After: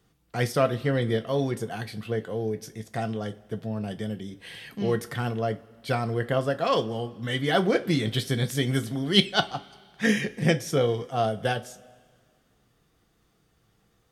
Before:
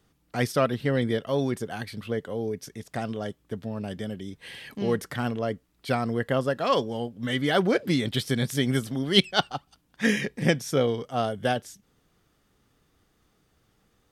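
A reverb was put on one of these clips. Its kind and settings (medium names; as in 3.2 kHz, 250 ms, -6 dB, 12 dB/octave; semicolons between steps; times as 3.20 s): two-slope reverb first 0.21 s, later 2 s, from -22 dB, DRR 7 dB; trim -1 dB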